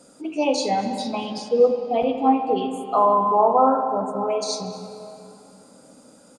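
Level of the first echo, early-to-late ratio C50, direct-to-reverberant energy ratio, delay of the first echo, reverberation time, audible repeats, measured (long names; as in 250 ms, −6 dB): −19.5 dB, 6.0 dB, 5.5 dB, 237 ms, 3.0 s, 1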